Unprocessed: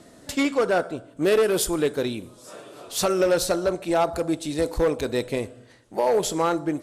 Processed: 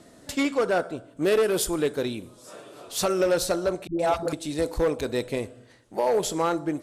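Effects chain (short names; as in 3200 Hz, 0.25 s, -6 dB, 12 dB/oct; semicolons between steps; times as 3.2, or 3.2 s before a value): 3.87–4.33 dispersion highs, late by 0.122 s, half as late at 430 Hz; gain -2 dB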